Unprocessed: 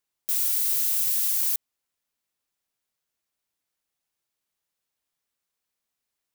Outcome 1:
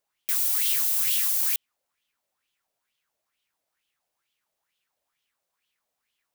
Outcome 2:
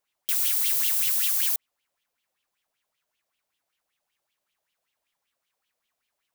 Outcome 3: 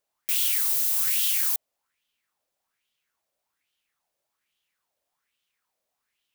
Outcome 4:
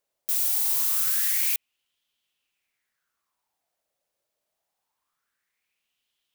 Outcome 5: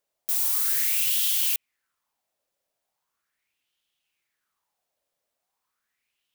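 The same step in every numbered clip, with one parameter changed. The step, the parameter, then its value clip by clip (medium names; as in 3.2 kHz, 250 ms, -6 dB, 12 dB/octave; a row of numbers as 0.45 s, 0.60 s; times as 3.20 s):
sweeping bell, rate: 2.2 Hz, 5.2 Hz, 1.2 Hz, 0.24 Hz, 0.39 Hz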